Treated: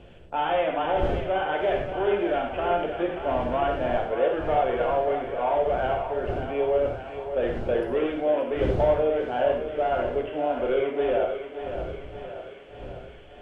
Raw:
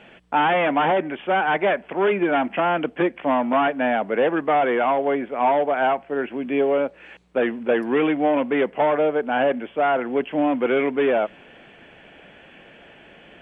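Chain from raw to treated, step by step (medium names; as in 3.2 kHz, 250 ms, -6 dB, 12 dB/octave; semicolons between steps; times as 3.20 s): wind noise 280 Hz -31 dBFS; graphic EQ 125/250/500/1000/2000 Hz -6/-10/+4/-6/-9 dB; thinning echo 580 ms, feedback 66%, high-pass 340 Hz, level -8.5 dB; reverberation, pre-delay 3 ms, DRR 1 dB; trim -4.5 dB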